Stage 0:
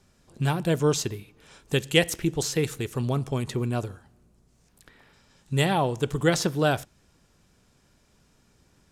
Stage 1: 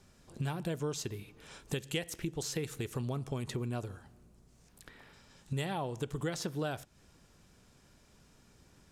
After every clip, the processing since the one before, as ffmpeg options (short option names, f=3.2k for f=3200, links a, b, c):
-af "acompressor=threshold=-34dB:ratio=5"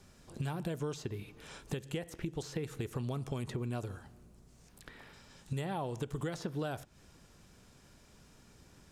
-filter_complex "[0:a]acrossover=split=1700|4900[a][b][c];[a]acompressor=threshold=-36dB:ratio=4[d];[b]acompressor=threshold=-55dB:ratio=4[e];[c]acompressor=threshold=-59dB:ratio=4[f];[d][e][f]amix=inputs=3:normalize=0,volume=2.5dB"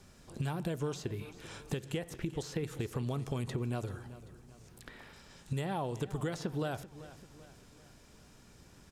-af "aecho=1:1:388|776|1164|1552:0.158|0.0745|0.035|0.0165,volume=1.5dB"